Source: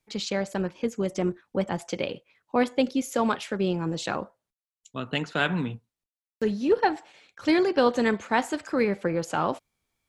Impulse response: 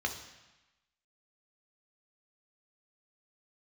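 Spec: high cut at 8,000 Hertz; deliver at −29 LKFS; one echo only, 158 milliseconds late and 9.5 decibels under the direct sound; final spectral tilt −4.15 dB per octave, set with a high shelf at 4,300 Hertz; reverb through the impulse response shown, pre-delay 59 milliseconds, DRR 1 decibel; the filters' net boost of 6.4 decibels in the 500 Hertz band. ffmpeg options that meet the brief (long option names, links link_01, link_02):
-filter_complex "[0:a]lowpass=8000,equalizer=frequency=500:width_type=o:gain=7.5,highshelf=frequency=4300:gain=5,aecho=1:1:158:0.335,asplit=2[link_01][link_02];[1:a]atrim=start_sample=2205,adelay=59[link_03];[link_02][link_03]afir=irnorm=-1:irlink=0,volume=-6.5dB[link_04];[link_01][link_04]amix=inputs=2:normalize=0,volume=-9dB"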